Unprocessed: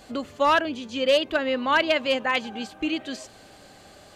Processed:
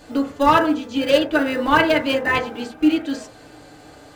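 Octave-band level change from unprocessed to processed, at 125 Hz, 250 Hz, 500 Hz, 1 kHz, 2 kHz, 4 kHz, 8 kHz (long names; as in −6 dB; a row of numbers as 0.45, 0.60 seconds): +13.5, +10.0, +4.0, +5.5, +4.0, +1.0, +3.0 decibels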